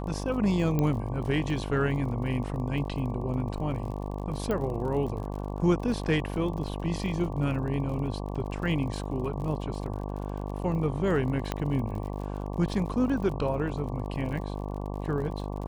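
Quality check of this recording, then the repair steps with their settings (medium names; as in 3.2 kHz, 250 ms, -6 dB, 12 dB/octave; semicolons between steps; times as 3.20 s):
buzz 50 Hz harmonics 23 -34 dBFS
crackle 42 per s -37 dBFS
0.79 s: pop -15 dBFS
4.51 s: pop -18 dBFS
11.52 s: pop -14 dBFS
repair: de-click; de-hum 50 Hz, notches 23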